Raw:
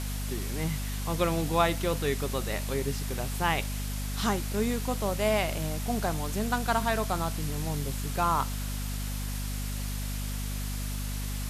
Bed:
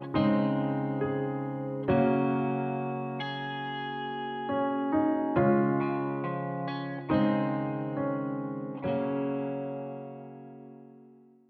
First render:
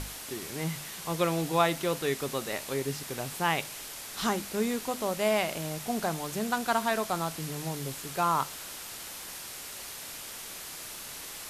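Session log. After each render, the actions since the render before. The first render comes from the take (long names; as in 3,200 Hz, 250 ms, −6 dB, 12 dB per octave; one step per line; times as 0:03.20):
mains-hum notches 50/100/150/200/250 Hz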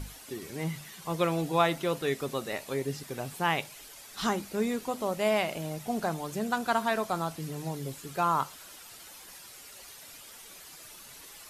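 broadband denoise 10 dB, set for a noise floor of −42 dBFS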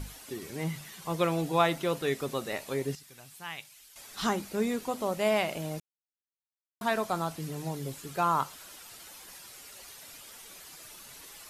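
0:02.95–0:03.96: guitar amp tone stack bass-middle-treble 5-5-5
0:05.80–0:06.81: silence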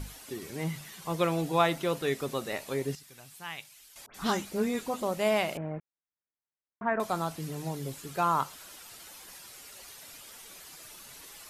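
0:04.06–0:05.03: all-pass dispersion highs, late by 86 ms, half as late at 2,100 Hz
0:05.57–0:07.00: Butterworth low-pass 2,100 Hz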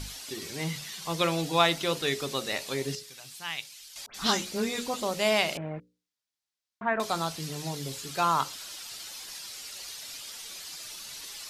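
parametric band 4,600 Hz +11.5 dB 1.8 octaves
mains-hum notches 60/120/180/240/300/360/420/480/540 Hz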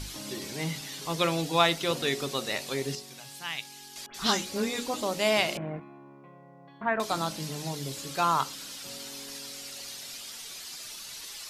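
mix in bed −19 dB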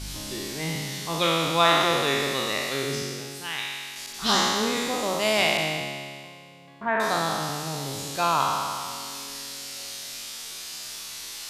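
peak hold with a decay on every bin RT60 2.13 s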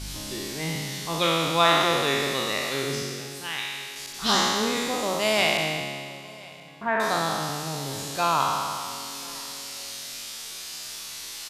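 single-tap delay 1,028 ms −23 dB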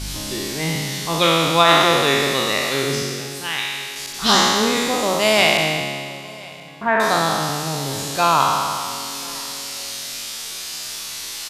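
level +7 dB
brickwall limiter −1 dBFS, peak gain reduction 3 dB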